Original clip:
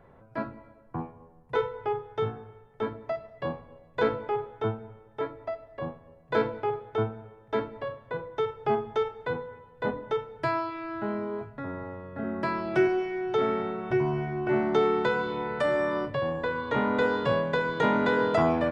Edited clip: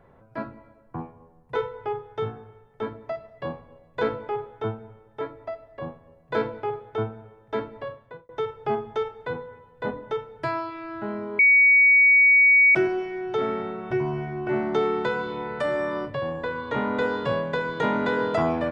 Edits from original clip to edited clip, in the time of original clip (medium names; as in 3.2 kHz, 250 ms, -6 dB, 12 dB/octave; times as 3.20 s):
7.88–8.29 s: fade out
11.39–12.75 s: bleep 2.25 kHz -12.5 dBFS